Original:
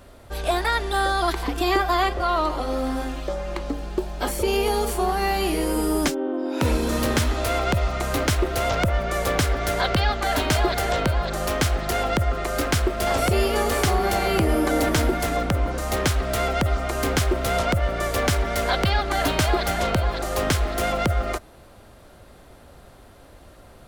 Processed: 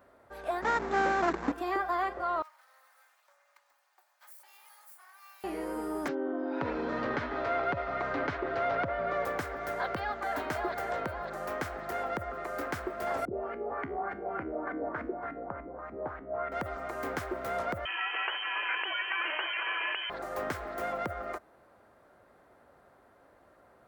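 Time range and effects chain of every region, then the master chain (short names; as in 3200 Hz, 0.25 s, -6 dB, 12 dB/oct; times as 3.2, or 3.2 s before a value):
0.62–1.52 half-waves squared off + Chebyshev low-pass 7700 Hz, order 10 + bell 220 Hz +11 dB 1.3 oct
2.42–5.44 minimum comb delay 3.3 ms + ladder high-pass 570 Hz, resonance 20% + differentiator
6.08–9.25 LPF 4500 Hz 24 dB/oct + comb 7.1 ms, depth 42% + fast leveller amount 50%
13.25–16.52 LFO low-pass saw up 3.4 Hz 230–2200 Hz + resonator 69 Hz, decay 0.46 s
17.85–20.1 inverted band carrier 3100 Hz + brick-wall FIR high-pass 300 Hz + fast leveller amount 70%
whole clip: HPF 480 Hz 6 dB/oct; band shelf 5900 Hz -14 dB 2.7 oct; gain -7.5 dB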